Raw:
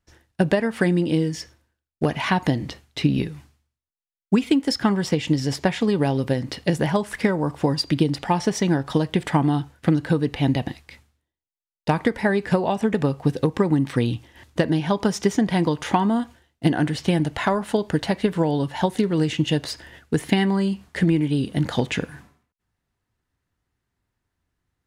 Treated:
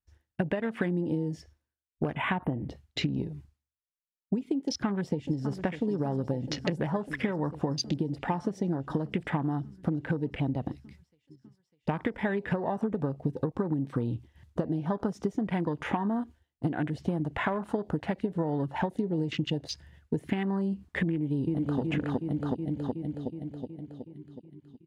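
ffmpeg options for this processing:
-filter_complex "[0:a]asplit=3[s0][s1][s2];[s0]afade=t=out:st=2.14:d=0.02[s3];[s1]asuperstop=centerf=5400:order=12:qfactor=0.9,afade=t=in:st=2.14:d=0.02,afade=t=out:st=2.68:d=0.02[s4];[s2]afade=t=in:st=2.68:d=0.02[s5];[s3][s4][s5]amix=inputs=3:normalize=0,asplit=2[s6][s7];[s7]afade=t=in:st=4.63:d=0.01,afade=t=out:st=5.61:d=0.01,aecho=0:1:600|1200|1800|2400|3000|3600|4200|4800|5400|6000|6600|7200:0.211349|0.169079|0.135263|0.108211|0.0865685|0.0692548|0.0554038|0.0443231|0.0354585|0.0283668|0.0226934|0.0181547[s8];[s6][s8]amix=inputs=2:normalize=0,asplit=2[s9][s10];[s10]afade=t=in:st=21.1:d=0.01,afade=t=out:st=21.8:d=0.01,aecho=0:1:370|740|1110|1480|1850|2220|2590|2960|3330|3700|4070:1|0.65|0.4225|0.274625|0.178506|0.116029|0.0754189|0.0490223|0.0318645|0.0207119|0.0134627[s11];[s9][s11]amix=inputs=2:normalize=0,acompressor=threshold=0.0631:ratio=8,afwtdn=0.0141,volume=0.841"

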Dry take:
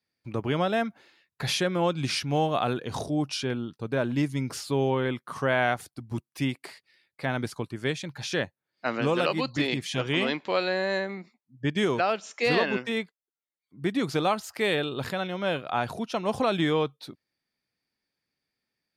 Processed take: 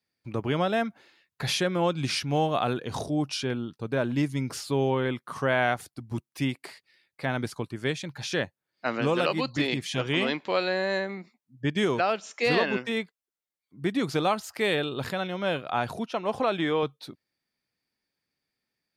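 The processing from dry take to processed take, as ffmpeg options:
-filter_complex "[0:a]asettb=1/sr,asplit=3[s0][s1][s2];[s0]atrim=end=16.064[s3];[s1]atrim=start=16.06:end=16.83,asetpts=PTS-STARTPTS,afade=t=in:d=0.004:c=qsin,afade=t=out:st=0.766:d=0.004:c=qsin,bass=f=250:g=-7,treble=f=4000:g=-8[s4];[s2]atrim=start=16.826[s5];[s3][s4]acrossfade=d=0.004:c1=hsin:c2=qsin[s6];[s6][s5]acrossfade=d=0.004:c1=qsin:c2=hsin"

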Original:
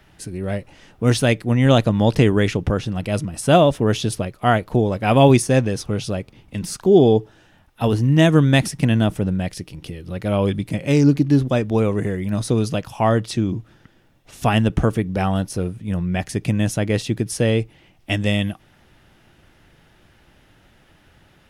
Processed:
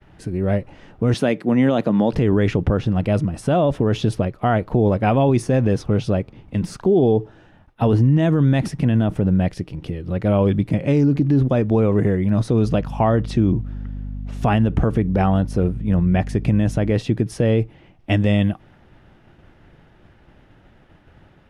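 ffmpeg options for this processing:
-filter_complex "[0:a]asettb=1/sr,asplit=3[s0][s1][s2];[s0]atrim=end=1.144[s3];[s1]atrim=start=1.14:end=2.13,asetpts=PTS-STARTPTS,afade=t=in:d=0.004:c=qsin,afade=t=out:st=0.986:d=0.004:c=qsin,highpass=f=170:w=0.5412,highpass=f=170:w=1.3066[s4];[s2]atrim=start=2.126[s5];[s3][s4]acrossfade=d=0.004:c1=hsin:c2=qsin[s6];[s6][s5]acrossfade=d=0.004:c1=qsin:c2=hsin,asettb=1/sr,asplit=3[s7][s8][s9];[s7]atrim=end=12.654[s10];[s8]atrim=start=12.65:end=16.92,asetpts=PTS-STARTPTS,afade=t=in:d=0.004:c=qsin,afade=t=out:st=4.266:d=0.004:c=qsin,aeval=exprs='val(0)+0.0224*(sin(2*PI*50*n/s)+sin(2*PI*2*50*n/s)/2+sin(2*PI*3*50*n/s)/3+sin(2*PI*4*50*n/s)/4+sin(2*PI*5*50*n/s)/5)':c=same[s11];[s9]atrim=start=16.916[s12];[s10][s11]acrossfade=d=0.004:c1=hsin:c2=qsin[s13];[s13][s12]acrossfade=d=0.004:c1=qsin:c2=hsin,lowpass=f=1200:p=1,agate=range=0.0224:threshold=0.00251:ratio=3:detection=peak,alimiter=limit=0.2:level=0:latency=1:release=47,volume=1.88"

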